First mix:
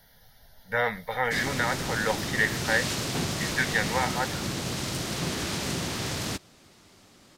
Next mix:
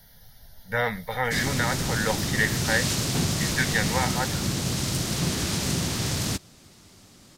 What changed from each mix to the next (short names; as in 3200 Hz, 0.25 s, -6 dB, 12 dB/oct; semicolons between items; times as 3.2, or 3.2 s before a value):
master: add tone controls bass +7 dB, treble +6 dB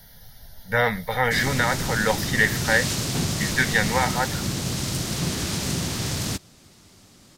speech +4.5 dB